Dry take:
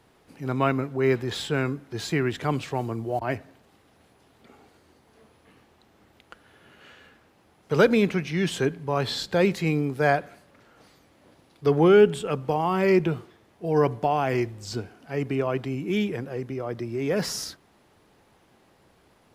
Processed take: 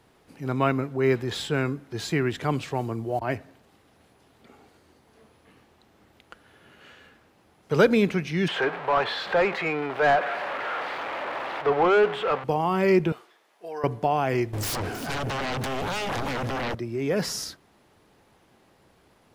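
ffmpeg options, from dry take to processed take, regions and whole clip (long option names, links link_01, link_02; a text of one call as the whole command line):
ffmpeg -i in.wav -filter_complex "[0:a]asettb=1/sr,asplit=3[link_01][link_02][link_03];[link_01]atrim=end=8.484[link_04];[link_02]atrim=start=8.48:end=12.44,asetpts=PTS-STARTPTS,afade=type=in:duration=0.004:curve=qsin,afade=type=out:start_time=3.956:duration=0.004:curve=qsin,aeval=exprs='val(0)+0.5*0.0355*sgn(val(0))':channel_layout=same,acrossover=split=500 3300:gain=0.158 1 0.0891[link_05][link_06][link_07];[link_05][link_06][link_07]amix=inputs=3:normalize=0,asplit=2[link_08][link_09];[link_09]highpass=frequency=720:poles=1,volume=18dB,asoftclip=type=tanh:threshold=-10.5dB[link_10];[link_08][link_10]amix=inputs=2:normalize=0,lowpass=frequency=1300:poles=1,volume=-6dB[link_11];[link_03]atrim=start=12.436[link_12];[link_04][link_11]acrossfade=duration=0.004:curve1=hsin:curve2=qsin[link_13];[link_13][link_12]acrossfade=duration=0.004:curve1=qsin:curve2=hsin,asettb=1/sr,asplit=3[link_14][link_15][link_16];[link_14]atrim=end=13.124[link_17];[link_15]atrim=start=13.12:end=13.84,asetpts=PTS-STARTPTS,afade=type=in:duration=0.004:curve=qsin,afade=type=out:start_time=0.716:duration=0.004:curve=qsin,highpass=660,acompressor=threshold=-33dB:ratio=2.5:attack=3.2:release=140:knee=1:detection=peak[link_18];[link_16]atrim=start=13.836[link_19];[link_17][link_18]acrossfade=duration=0.004:curve1=hsin:curve2=qsin[link_20];[link_20][link_19]acrossfade=duration=0.004:curve1=qsin:curve2=hsin,asettb=1/sr,asplit=3[link_21][link_22][link_23];[link_21]atrim=end=14.534[link_24];[link_22]atrim=start=14.53:end=16.75,asetpts=PTS-STARTPTS,afade=type=in:duration=0.004:curve=qsin,afade=type=out:start_time=2.216:duration=0.004:curve=qsin,acompressor=threshold=-33dB:ratio=10:attack=3.2:release=140:knee=1:detection=peak,aeval=exprs='0.0501*sin(PI/2*5.62*val(0)/0.0501)':channel_layout=same,aecho=1:1:317:0.251,atrim=end_sample=97902[link_25];[link_23]atrim=start=16.746[link_26];[link_24][link_25]acrossfade=duration=0.004:curve1=hsin:curve2=qsin[link_27];[link_27][link_26]acrossfade=duration=0.004:curve1=qsin:curve2=hsin" out.wav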